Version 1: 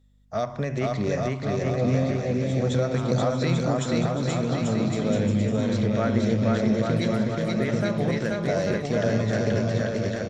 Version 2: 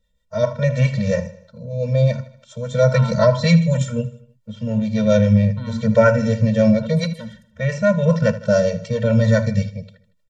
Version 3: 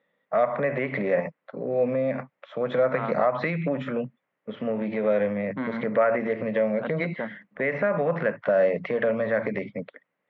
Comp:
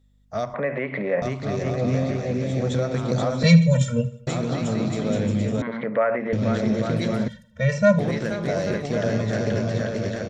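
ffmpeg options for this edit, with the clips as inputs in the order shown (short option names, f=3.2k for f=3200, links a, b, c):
-filter_complex "[2:a]asplit=2[a][b];[1:a]asplit=2[c][d];[0:a]asplit=5[e][f][g][h][i];[e]atrim=end=0.542[j];[a]atrim=start=0.538:end=1.222[k];[f]atrim=start=1.218:end=3.432[l];[c]atrim=start=3.428:end=4.272[m];[g]atrim=start=4.268:end=5.622[n];[b]atrim=start=5.618:end=6.332[o];[h]atrim=start=6.328:end=7.282[p];[d]atrim=start=7.278:end=7.992[q];[i]atrim=start=7.988[r];[j][k]acrossfade=d=0.004:c1=hsin:c2=hsin[s];[s][l]acrossfade=d=0.004:c1=hsin:c2=hsin[t];[t][m]acrossfade=d=0.004:c1=hsin:c2=hsin[u];[u][n]acrossfade=d=0.004:c1=hsin:c2=hsin[v];[v][o]acrossfade=d=0.004:c1=hsin:c2=hsin[w];[w][p]acrossfade=d=0.004:c1=hsin:c2=hsin[x];[x][q]acrossfade=d=0.004:c1=hsin:c2=hsin[y];[y][r]acrossfade=d=0.004:c1=hsin:c2=hsin"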